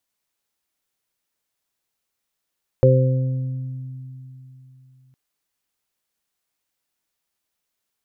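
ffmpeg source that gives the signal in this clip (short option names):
-f lavfi -i "aevalsrc='0.251*pow(10,-3*t/3.41)*sin(2*PI*130*t)+0.0631*pow(10,-3*t/2.77)*sin(2*PI*260*t)+0.112*pow(10,-3*t/0.9)*sin(2*PI*390*t)+0.282*pow(10,-3*t/1.02)*sin(2*PI*520*t)':d=2.31:s=44100"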